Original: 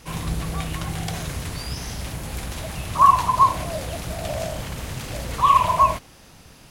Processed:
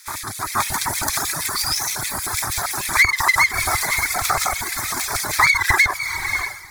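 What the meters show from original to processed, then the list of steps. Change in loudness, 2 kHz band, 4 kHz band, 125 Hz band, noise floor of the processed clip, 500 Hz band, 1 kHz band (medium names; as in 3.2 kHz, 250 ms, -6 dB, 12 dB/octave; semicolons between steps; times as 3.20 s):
+3.5 dB, +18.5 dB, +9.5 dB, -5.5 dB, -33 dBFS, -3.0 dB, -4.5 dB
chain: full-wave rectifier; LFO high-pass square 6.4 Hz 410–2500 Hz; on a send: echo that smears into a reverb 543 ms, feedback 52%, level -11 dB; on the sum: compression 8:1, threshold -24 dBFS, peak gain reduction 13 dB; reverb removal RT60 2 s; resonant low shelf 140 Hz +12 dB, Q 1.5; level rider gain up to 9 dB; peaking EQ 310 Hz -7 dB 2.4 oct; static phaser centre 1.2 kHz, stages 4; loudness maximiser +14.5 dB; trim -3.5 dB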